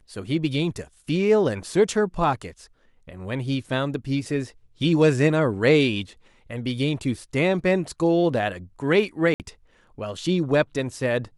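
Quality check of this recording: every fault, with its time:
9.34–9.40 s: dropout 58 ms

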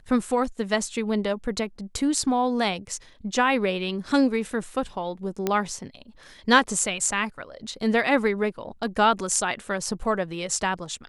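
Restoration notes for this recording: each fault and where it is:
5.47 s: pop -10 dBFS

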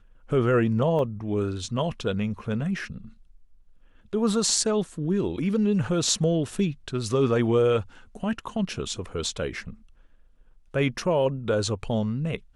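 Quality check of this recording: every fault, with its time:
0.99 s: dropout 2.1 ms

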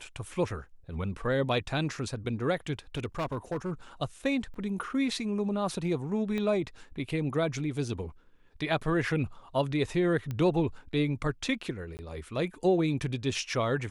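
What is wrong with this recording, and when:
2.95–3.71 s: clipped -27.5 dBFS
4.54 s: dropout 2.7 ms
6.38 s: pop -21 dBFS
10.31 s: pop -22 dBFS
11.97–11.99 s: dropout 19 ms

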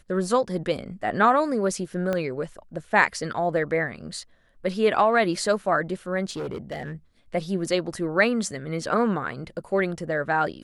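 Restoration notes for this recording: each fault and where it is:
2.13 s: pop -14 dBFS
6.29–6.93 s: clipped -27.5 dBFS

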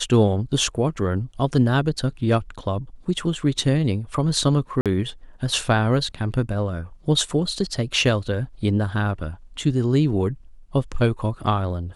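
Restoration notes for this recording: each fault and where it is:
4.81–4.86 s: dropout 47 ms

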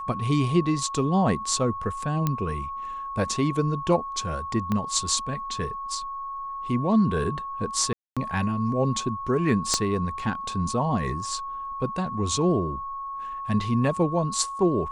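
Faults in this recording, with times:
whine 1.1 kHz -31 dBFS
2.27 s: pop -11 dBFS
4.72 s: pop -14 dBFS
7.93–8.17 s: dropout 236 ms
9.74 s: pop -9 dBFS

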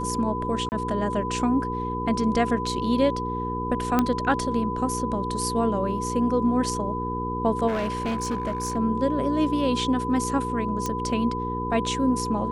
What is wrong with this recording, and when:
hum 60 Hz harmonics 8 -31 dBFS
whine 1 kHz -29 dBFS
0.69–0.72 s: dropout 29 ms
3.99 s: pop -8 dBFS
7.67–8.77 s: clipped -22.5 dBFS
10.86 s: pop -13 dBFS

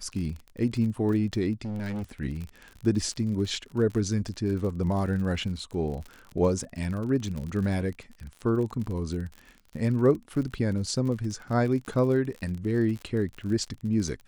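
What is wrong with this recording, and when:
crackle 46 per s -34 dBFS
1.65–2.03 s: clipped -29.5 dBFS

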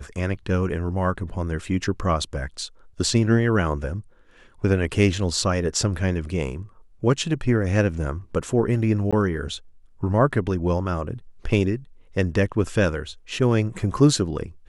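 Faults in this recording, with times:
9.11–9.13 s: dropout 16 ms

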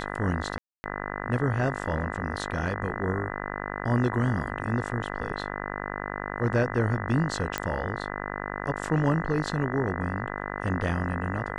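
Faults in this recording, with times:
buzz 50 Hz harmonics 40 -34 dBFS
0.58–0.84 s: dropout 260 ms
7.58 s: pop -11 dBFS

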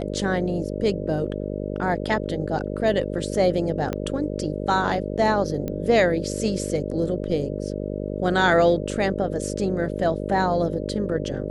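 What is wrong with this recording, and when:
buzz 50 Hz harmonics 12 -29 dBFS
3.93 s: pop -13 dBFS
5.68 s: pop -16 dBFS

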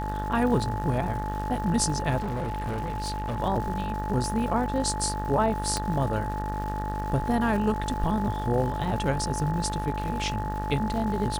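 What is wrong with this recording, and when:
buzz 50 Hz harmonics 38 -32 dBFS
crackle 310 per s -36 dBFS
whine 860 Hz -32 dBFS
2.18–3.40 s: clipped -26.5 dBFS
5.77 s: pop -13 dBFS

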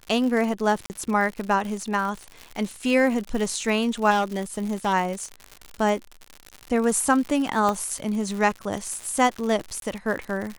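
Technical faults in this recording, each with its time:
crackle 120 per s -29 dBFS
0.86–0.90 s: dropout 39 ms
4.10–4.94 s: clipped -18 dBFS
7.69 s: pop -12 dBFS
9.80–9.82 s: dropout 22 ms

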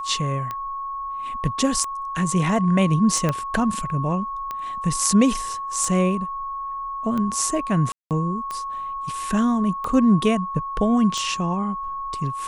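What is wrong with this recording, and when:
tick 45 rpm -16 dBFS
whine 1.1 kHz -27 dBFS
3.29 s: pop -9 dBFS
7.92–8.11 s: dropout 188 ms

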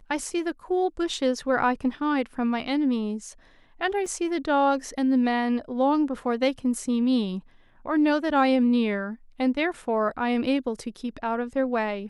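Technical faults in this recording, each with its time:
4.06 s: dropout 3.2 ms

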